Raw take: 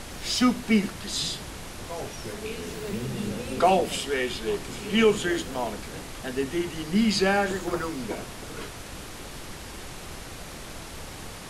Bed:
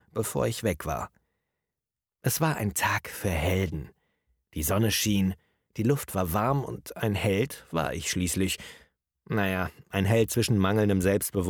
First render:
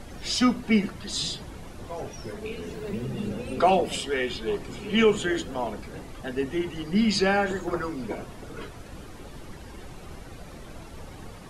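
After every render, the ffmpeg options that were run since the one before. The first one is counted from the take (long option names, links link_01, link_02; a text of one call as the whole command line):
ffmpeg -i in.wav -af "afftdn=noise_reduction=11:noise_floor=-40" out.wav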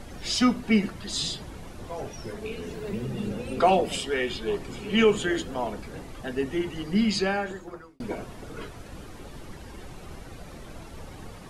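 ffmpeg -i in.wav -filter_complex "[0:a]asplit=2[link_01][link_02];[link_01]atrim=end=8,asetpts=PTS-STARTPTS,afade=type=out:start_time=6.92:duration=1.08[link_03];[link_02]atrim=start=8,asetpts=PTS-STARTPTS,afade=type=in:duration=0.004:curve=hsin[link_04];[link_03][link_04]concat=n=2:v=0:a=1" out.wav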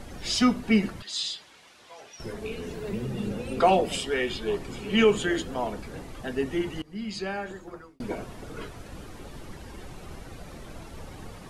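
ffmpeg -i in.wav -filter_complex "[0:a]asettb=1/sr,asplit=3[link_01][link_02][link_03];[link_01]atrim=end=1.024[link_04];[link_02]atrim=start=1.02:end=2.2,asetpts=PTS-STARTPTS,afade=type=in:duration=0.004:curve=qsin,afade=type=out:start_time=1.176:duration=0.004:curve=qsin,bandpass=frequency=3500:width_type=q:width=0.73[link_05];[link_03]atrim=start=2.196[link_06];[link_04][link_05]acrossfade=duration=0.004:curve1=hsin:curve2=qsin[link_07];[link_07][link_06]acrossfade=duration=0.004:curve1=qsin:curve2=hsin,asplit=2[link_08][link_09];[link_08]atrim=end=6.82,asetpts=PTS-STARTPTS,afade=type=out:start_time=6.816:duration=0.004:curve=hsin:silence=0.0944061[link_10];[link_09]atrim=start=6.82,asetpts=PTS-STARTPTS,afade=type=in:duration=1.07:silence=0.0944061[link_11];[link_10][link_11]concat=n=2:v=0:a=1" out.wav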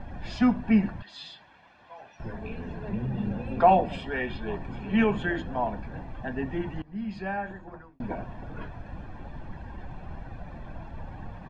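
ffmpeg -i in.wav -af "lowpass=1800,aecho=1:1:1.2:0.58" out.wav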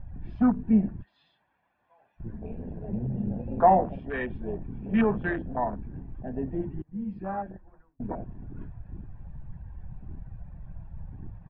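ffmpeg -i in.wav -af "afwtdn=0.0282,lowpass=2300" out.wav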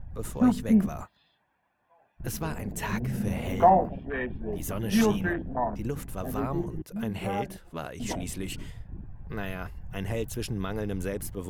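ffmpeg -i in.wav -i bed.wav -filter_complex "[1:a]volume=-8.5dB[link_01];[0:a][link_01]amix=inputs=2:normalize=0" out.wav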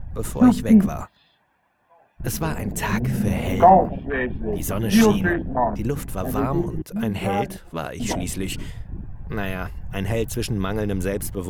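ffmpeg -i in.wav -af "volume=7.5dB,alimiter=limit=-2dB:level=0:latency=1" out.wav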